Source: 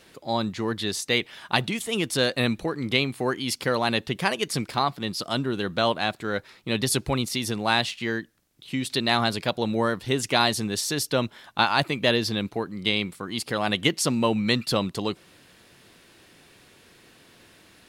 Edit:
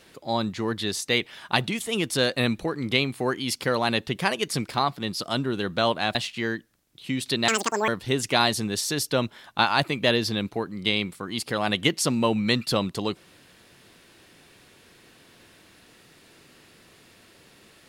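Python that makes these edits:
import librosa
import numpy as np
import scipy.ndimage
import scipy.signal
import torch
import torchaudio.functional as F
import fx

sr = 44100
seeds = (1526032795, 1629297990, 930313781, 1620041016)

y = fx.edit(x, sr, fx.cut(start_s=6.15, length_s=1.64),
    fx.speed_span(start_s=9.12, length_s=0.76, speed=1.9), tone=tone)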